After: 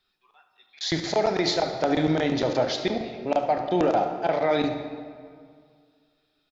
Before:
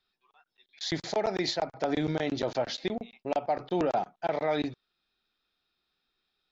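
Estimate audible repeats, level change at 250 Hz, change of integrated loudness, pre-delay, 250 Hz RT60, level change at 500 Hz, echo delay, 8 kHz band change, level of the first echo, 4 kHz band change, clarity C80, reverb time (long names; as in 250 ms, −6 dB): 1, +6.5 dB, +6.0 dB, 27 ms, 2.1 s, +6.0 dB, 72 ms, can't be measured, −14.5 dB, +6.0 dB, 8.0 dB, 2.0 s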